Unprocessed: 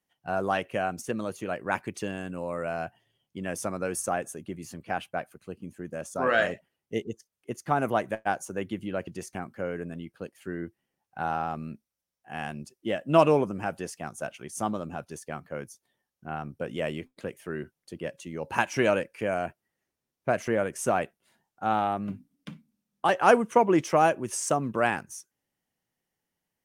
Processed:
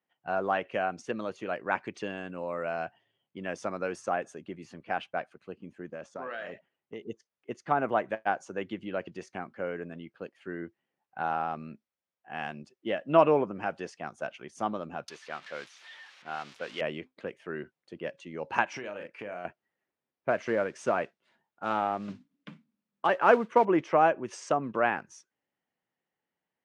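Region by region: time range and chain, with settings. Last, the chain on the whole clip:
5.88–7.03 LPF 7000 Hz + compressor 8:1, threshold -33 dBFS
15.08–16.81 switching spikes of -28.5 dBFS + tilt +3.5 dB/oct
18.73–19.45 doubler 39 ms -8 dB + compressor 20:1, threshold -32 dBFS
20.3–23.65 notch 760 Hz, Q 11 + modulation noise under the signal 21 dB
whole clip: treble ducked by the level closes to 2300 Hz, closed at -22.5 dBFS; HPF 310 Hz 6 dB/oct; low-pass opened by the level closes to 2600 Hz, open at -22 dBFS

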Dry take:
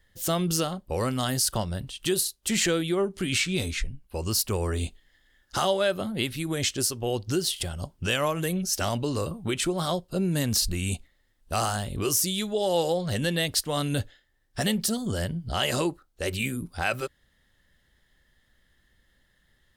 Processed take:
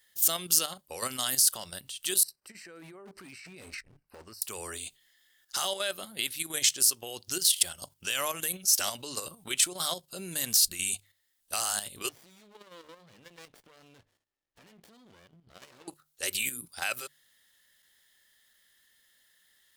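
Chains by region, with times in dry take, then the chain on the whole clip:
2.23–4.42 negative-ratio compressor -34 dBFS + running mean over 13 samples + hard clip -30.5 dBFS
12.09–15.88 air absorption 330 m + compressor 4:1, threshold -39 dBFS + running maximum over 33 samples
whole clip: tilt +4.5 dB/oct; notches 50/100/150 Hz; level quantiser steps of 9 dB; gain -3.5 dB

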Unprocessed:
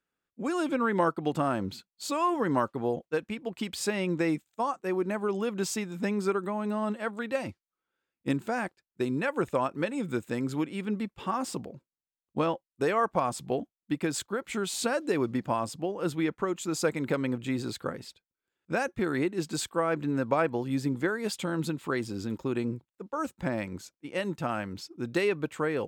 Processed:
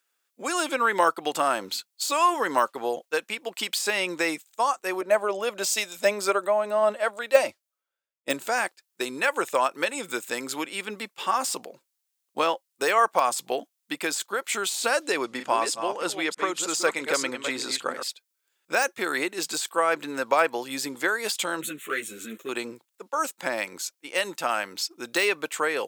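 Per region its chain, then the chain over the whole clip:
5.01–8.47 bell 600 Hz +14 dB 0.27 oct + three-band expander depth 70%
15.07–18.03 reverse delay 0.319 s, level -7.5 dB + Bessel low-pass 9200 Hz, order 4
21.61–22.49 sample leveller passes 1 + fixed phaser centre 2100 Hz, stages 4 + ensemble effect
whole clip: de-esser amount 90%; HPF 550 Hz 12 dB/oct; high shelf 3200 Hz +12 dB; gain +6 dB

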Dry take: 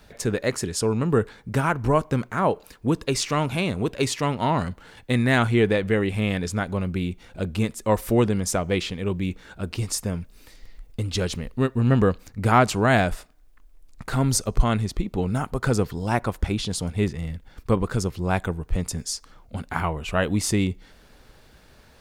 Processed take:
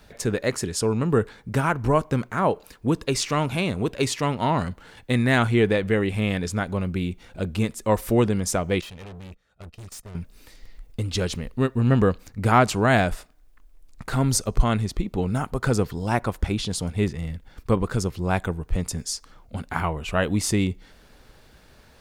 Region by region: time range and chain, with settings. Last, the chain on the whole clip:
8.81–10.15 gate -34 dBFS, range -20 dB + comb 1.6 ms, depth 56% + tube stage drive 38 dB, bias 0.6
whole clip: dry

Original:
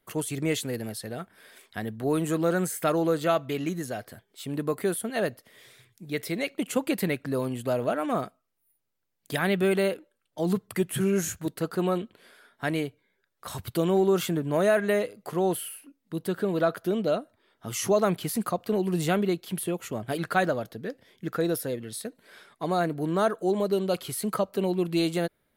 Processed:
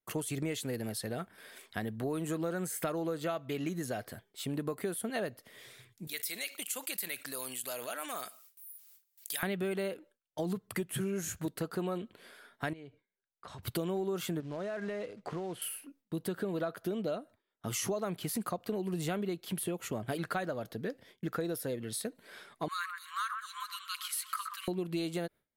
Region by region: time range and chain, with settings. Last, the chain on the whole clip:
6.07–9.43 differentiator + fast leveller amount 50%
12.73–13.63 compressor 10:1, threshold -42 dBFS + air absorption 110 m
14.4–15.62 compressor 10:1, threshold -33 dBFS + short-mantissa float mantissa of 2-bit + air absorption 100 m
22.68–24.68 brick-wall FIR high-pass 1000 Hz + echo with dull and thin repeats by turns 0.124 s, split 2200 Hz, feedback 57%, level -8 dB
whole clip: gate with hold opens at -47 dBFS; compressor 6:1, threshold -32 dBFS

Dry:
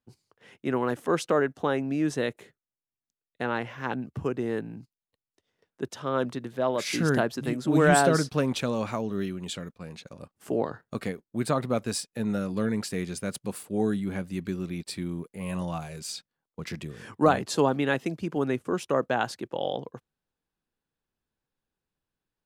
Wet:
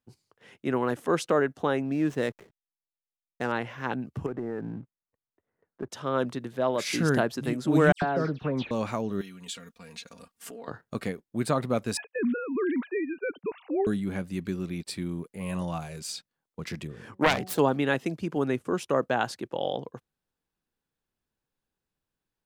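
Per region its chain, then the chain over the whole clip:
1.85–3.52 median filter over 9 samples + backlash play -51.5 dBFS
4.26–5.92 LPF 1800 Hz 24 dB/oct + sample leveller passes 1 + compressor, threshold -29 dBFS
7.92–8.71 compressor 2:1, threshold -24 dBFS + air absorption 300 m + dispersion lows, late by 99 ms, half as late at 3000 Hz
9.21–10.68 comb 4.3 ms, depth 85% + compressor 3:1, threshold -40 dBFS + tilt shelf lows -6 dB, about 1200 Hz
11.97–13.87 sine-wave speech + three-band squash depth 70%
16.87–17.59 self-modulated delay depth 0.47 ms + de-hum 185.5 Hz, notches 4 + mismatched tape noise reduction decoder only
whole clip: dry

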